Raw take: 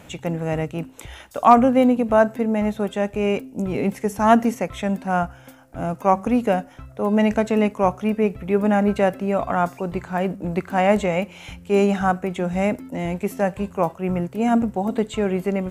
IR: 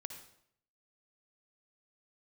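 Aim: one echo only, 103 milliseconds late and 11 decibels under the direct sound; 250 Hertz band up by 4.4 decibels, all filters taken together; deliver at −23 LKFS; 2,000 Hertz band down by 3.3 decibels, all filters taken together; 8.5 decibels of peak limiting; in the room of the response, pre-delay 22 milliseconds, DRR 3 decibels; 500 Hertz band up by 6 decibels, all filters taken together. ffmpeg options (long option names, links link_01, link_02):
-filter_complex "[0:a]equalizer=frequency=250:width_type=o:gain=4,equalizer=frequency=500:width_type=o:gain=7,equalizer=frequency=2000:width_type=o:gain=-5,alimiter=limit=-6dB:level=0:latency=1,aecho=1:1:103:0.282,asplit=2[link_01][link_02];[1:a]atrim=start_sample=2205,adelay=22[link_03];[link_02][link_03]afir=irnorm=-1:irlink=0,volume=0dB[link_04];[link_01][link_04]amix=inputs=2:normalize=0,volume=-7dB"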